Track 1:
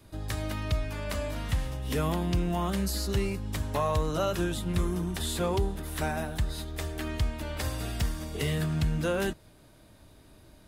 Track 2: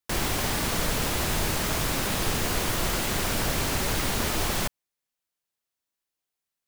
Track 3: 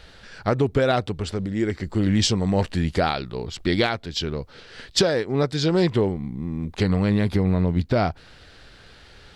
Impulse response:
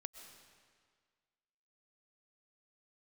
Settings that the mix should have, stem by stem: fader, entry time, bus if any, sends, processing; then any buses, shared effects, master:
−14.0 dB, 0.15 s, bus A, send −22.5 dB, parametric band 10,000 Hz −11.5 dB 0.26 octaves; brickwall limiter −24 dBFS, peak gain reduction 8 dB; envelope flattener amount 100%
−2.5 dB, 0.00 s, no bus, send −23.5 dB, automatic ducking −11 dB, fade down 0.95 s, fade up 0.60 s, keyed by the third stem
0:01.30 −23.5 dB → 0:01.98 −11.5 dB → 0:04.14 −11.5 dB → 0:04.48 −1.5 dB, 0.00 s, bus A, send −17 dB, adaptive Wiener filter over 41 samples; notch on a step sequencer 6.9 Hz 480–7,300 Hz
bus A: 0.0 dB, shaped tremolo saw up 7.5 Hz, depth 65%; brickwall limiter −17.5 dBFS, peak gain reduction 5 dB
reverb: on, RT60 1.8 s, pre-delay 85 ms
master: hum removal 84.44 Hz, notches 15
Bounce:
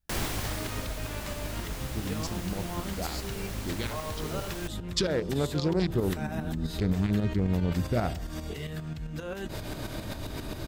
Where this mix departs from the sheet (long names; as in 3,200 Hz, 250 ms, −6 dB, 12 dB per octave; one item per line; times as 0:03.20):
stem 1 −14.0 dB → −6.0 dB
stem 2: send off